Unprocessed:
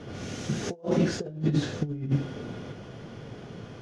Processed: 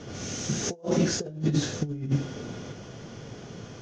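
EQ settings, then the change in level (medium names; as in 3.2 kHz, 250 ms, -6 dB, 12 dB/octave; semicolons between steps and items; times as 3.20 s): resonant low-pass 6.4 kHz, resonance Q 3.7; 0.0 dB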